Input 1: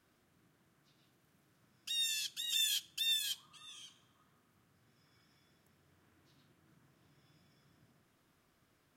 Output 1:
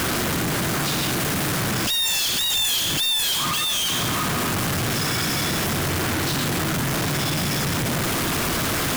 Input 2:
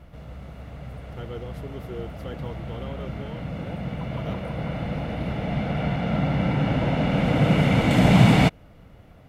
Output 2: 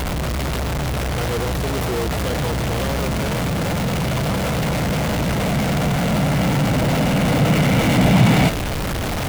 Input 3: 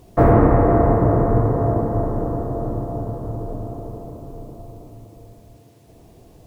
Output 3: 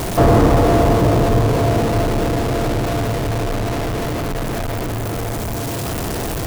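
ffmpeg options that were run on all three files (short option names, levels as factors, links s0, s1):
-af "aeval=exprs='val(0)+0.5*0.158*sgn(val(0))':c=same,volume=0.891"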